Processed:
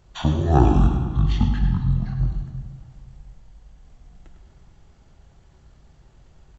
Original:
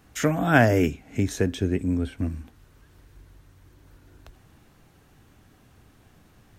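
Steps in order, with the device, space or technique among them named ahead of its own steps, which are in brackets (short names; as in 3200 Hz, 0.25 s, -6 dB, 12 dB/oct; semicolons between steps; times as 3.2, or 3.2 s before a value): monster voice (pitch shift -12 st; low shelf 120 Hz +7 dB; echo 0.102 s -10 dB; reverb RT60 1.9 s, pre-delay 27 ms, DRR 5.5 dB); 0.69–1.27 air absorption 51 m; gain -1 dB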